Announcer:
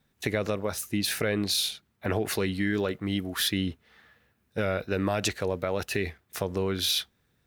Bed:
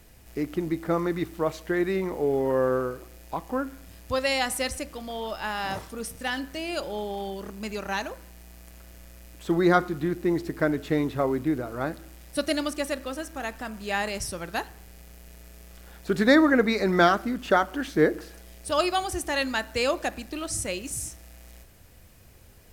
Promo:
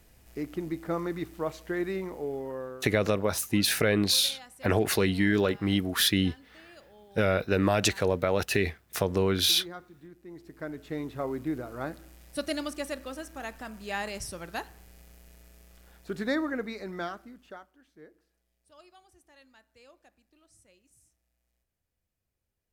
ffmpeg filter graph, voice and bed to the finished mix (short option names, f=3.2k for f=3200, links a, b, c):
-filter_complex "[0:a]adelay=2600,volume=3dB[a];[1:a]volume=11.5dB,afade=t=out:st=1.9:d=0.98:silence=0.141254,afade=t=in:st=10.27:d=1.3:silence=0.141254,afade=t=out:st=15:d=2.73:silence=0.0501187[b];[a][b]amix=inputs=2:normalize=0"